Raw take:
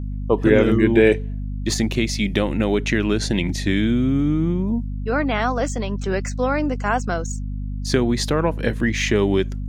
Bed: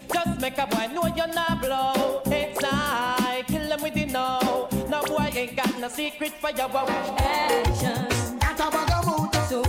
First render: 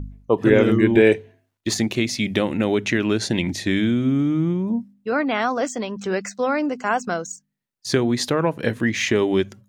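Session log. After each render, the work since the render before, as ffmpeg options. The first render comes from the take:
-af "bandreject=f=50:t=h:w=4,bandreject=f=100:t=h:w=4,bandreject=f=150:t=h:w=4,bandreject=f=200:t=h:w=4,bandreject=f=250:t=h:w=4"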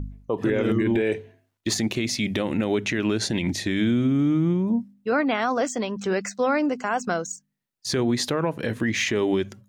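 -af "alimiter=limit=-14dB:level=0:latency=1:release=50"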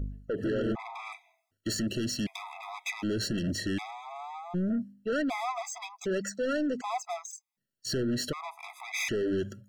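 -af "asoftclip=type=tanh:threshold=-26dB,afftfilt=real='re*gt(sin(2*PI*0.66*pts/sr)*(1-2*mod(floor(b*sr/1024/660),2)),0)':imag='im*gt(sin(2*PI*0.66*pts/sr)*(1-2*mod(floor(b*sr/1024/660),2)),0)':win_size=1024:overlap=0.75"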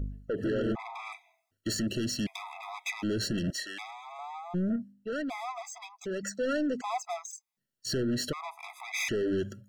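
-filter_complex "[0:a]asettb=1/sr,asplit=3[a][b][c];[a]atrim=end=3.504[d];[b]atrim=start=3.5:end=4.19,asetpts=PTS-STARTPTS,afade=t=in:d=0.004:c=qsin,afade=t=out:st=0.686:d=0.004:c=qsin,highpass=820[e];[c]atrim=start=4.186[f];[d][e]acrossfade=d=0.004:c1=hsin:c2=qsin[g];[g][f]acrossfade=d=0.004:c1=qsin:c2=hsin,asplit=3[h][i][j];[h]atrim=end=4.762[k];[i]atrim=start=4.758:end=6.232,asetpts=PTS-STARTPTS,volume=-4.5dB[l];[j]atrim=start=6.228[m];[k][l]acrossfade=d=0.004:c1=hsin:c2=hsin[n];[n][m]acrossfade=d=0.004:c1=hsin:c2=hsin"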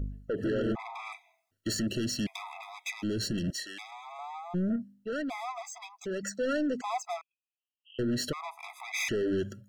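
-filter_complex "[0:a]asettb=1/sr,asplit=3[a][b][c];[a]atrim=end=2.634[d];[b]atrim=start=2.63:end=3.92,asetpts=PTS-STARTPTS,afade=t=in:d=0.004:c=qsin,afade=t=out:st=1.286:d=0.004:c=qsin,equalizer=f=1k:w=0.66:g=-6[e];[c]atrim=start=3.916[f];[d][e]acrossfade=d=0.004:c1=hsin:c2=qsin[g];[g][f]acrossfade=d=0.004:c1=qsin:c2=hsin,asettb=1/sr,asplit=3[h][i][j];[h]atrim=end=7.214[k];[i]atrim=start=7.21:end=7.99,asetpts=PTS-STARTPTS,afade=t=in:d=0.004:c=qsin,afade=t=out:st=0.776:d=0.004:c=qsin,asuperpass=centerf=2800:order=20:qfactor=3.3[l];[j]atrim=start=7.986[m];[k][l]acrossfade=d=0.004:c1=hsin:c2=qsin[n];[n][m]acrossfade=d=0.004:c1=qsin:c2=hsin"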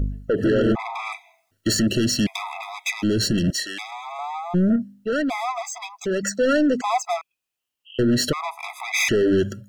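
-af "volume=11dB"

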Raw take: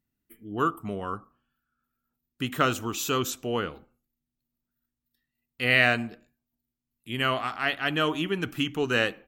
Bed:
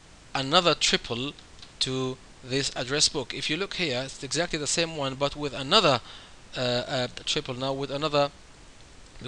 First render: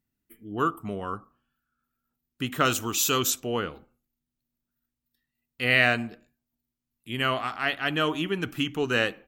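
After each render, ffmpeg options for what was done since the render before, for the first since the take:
-filter_complex "[0:a]asettb=1/sr,asplit=3[a][b][c];[a]atrim=end=2.654[d];[b]atrim=start=2.65:end=3.4,asetpts=PTS-STARTPTS,afade=t=in:d=0.004:c=qsin,afade=t=out:st=0.746:d=0.004:c=qsin,highshelf=f=2.9k:g=9[e];[c]atrim=start=3.396[f];[d][e]acrossfade=d=0.004:c1=hsin:c2=qsin[g];[g][f]acrossfade=d=0.004:c1=qsin:c2=hsin"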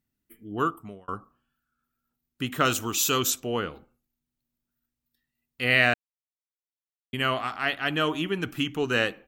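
-filter_complex "[0:a]asplit=4[a][b][c][d];[a]atrim=end=1.08,asetpts=PTS-STARTPTS,afade=t=out:st=0.62:d=0.46[e];[b]atrim=start=1.08:end=5.94,asetpts=PTS-STARTPTS,afade=t=in:d=0.004:c=hsin,afade=t=out:st=4.856:d=0.004:c=hsin[f];[c]atrim=start=5.94:end=7.13,asetpts=PTS-STARTPTS,volume=0[g];[d]atrim=start=7.13,asetpts=PTS-STARTPTS,afade=t=in:d=0.004:c=hsin[h];[e][f][g][h]concat=n=4:v=0:a=1"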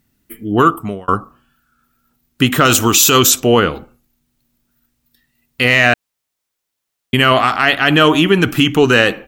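-af "acontrast=78,alimiter=level_in=11.5dB:limit=-1dB:release=50:level=0:latency=1"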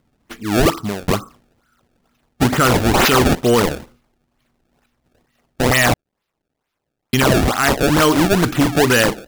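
-af "acrusher=samples=25:mix=1:aa=0.000001:lfo=1:lforange=40:lforate=2.2,asoftclip=type=tanh:threshold=-7dB"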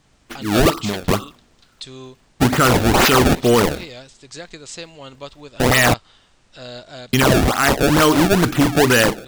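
-filter_complex "[1:a]volume=-8dB[a];[0:a][a]amix=inputs=2:normalize=0"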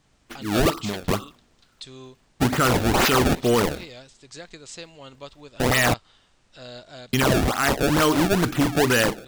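-af "volume=-5.5dB"

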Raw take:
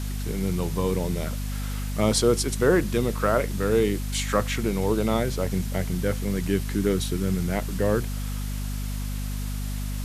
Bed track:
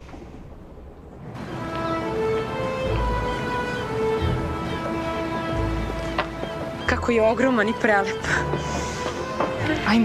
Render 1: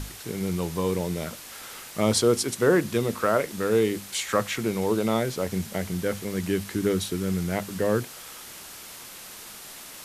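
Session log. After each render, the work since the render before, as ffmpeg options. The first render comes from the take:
-af "bandreject=f=50:t=h:w=6,bandreject=f=100:t=h:w=6,bandreject=f=150:t=h:w=6,bandreject=f=200:t=h:w=6,bandreject=f=250:t=h:w=6"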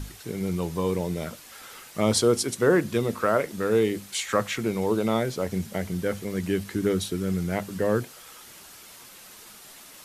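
-af "afftdn=nr=6:nf=-43"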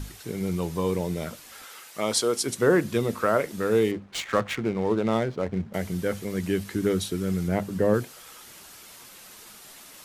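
-filter_complex "[0:a]asettb=1/sr,asplit=3[a][b][c];[a]atrim=end=1.644[d];[b]atrim=start=1.64:end=2.44,asetpts=PTS-STARTPTS,afade=t=in:d=0.004:c=qsin,afade=t=out:st=0.796:d=0.004:c=qsin,highpass=f=560:p=1[e];[c]atrim=start=2.436[f];[d][e]acrossfade=d=0.004:c1=hsin:c2=qsin[g];[g][f]acrossfade=d=0.004:c1=qsin:c2=hsin,asettb=1/sr,asplit=3[h][i][j];[h]atrim=end=3.914[k];[i]atrim=start=3.91:end=5.74,asetpts=PTS-STARTPTS,afade=t=in:d=0.004:c=qsin,afade=t=out:st=1.826:d=0.004:c=qsin,adynamicsmooth=sensitivity=6.5:basefreq=930[l];[j]atrim=start=5.736[m];[k][l]acrossfade=d=0.004:c1=hsin:c2=qsin[n];[n][m]acrossfade=d=0.004:c1=qsin:c2=hsin,asettb=1/sr,asplit=3[o][p][q];[o]atrim=end=7.484[r];[p]atrim=start=7.48:end=7.94,asetpts=PTS-STARTPTS,afade=t=in:d=0.004:c=qsin,afade=t=out:st=0.456:d=0.004:c=qsin,tiltshelf=f=970:g=4[s];[q]atrim=start=7.936[t];[r][s]acrossfade=d=0.004:c1=hsin:c2=qsin[u];[u][t]acrossfade=d=0.004:c1=qsin:c2=hsin"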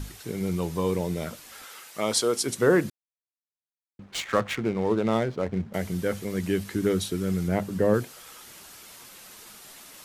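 -filter_complex "[0:a]asplit=3[a][b][c];[a]atrim=end=2.9,asetpts=PTS-STARTPTS,afade=t=out:st=2.896:d=0.004:c=hsin[d];[b]atrim=start=2.9:end=3.99,asetpts=PTS-STARTPTS,volume=0[e];[c]atrim=start=3.99,asetpts=PTS-STARTPTS,afade=t=in:d=0.004:c=hsin[f];[d][e][f]concat=n=3:v=0:a=1"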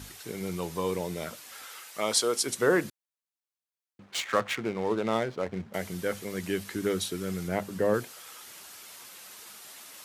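-af "highpass=53,lowshelf=f=330:g=-9.5"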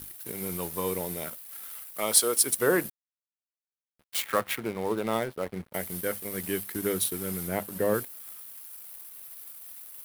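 -af "aeval=exprs='sgn(val(0))*max(abs(val(0))-0.00501,0)':c=same,aexciter=amount=6.1:drive=4.6:freq=9.2k"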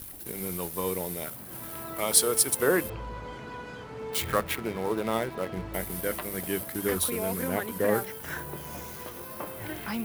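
-filter_complex "[1:a]volume=-14.5dB[a];[0:a][a]amix=inputs=2:normalize=0"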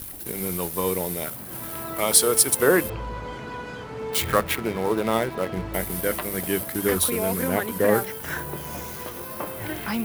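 -af "volume=5.5dB,alimiter=limit=-3dB:level=0:latency=1"

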